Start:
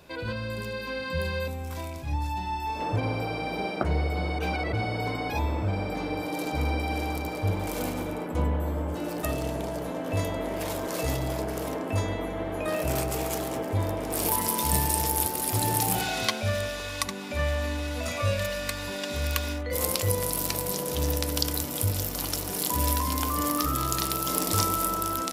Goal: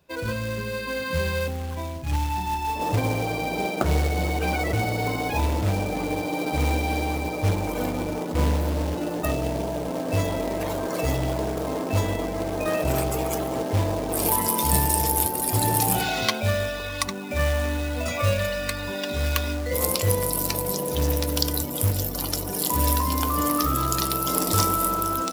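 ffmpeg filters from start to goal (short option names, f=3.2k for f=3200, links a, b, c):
-af "acontrast=54,afftdn=nr=17:nf=-33,acrusher=bits=3:mode=log:mix=0:aa=0.000001,volume=-2dB"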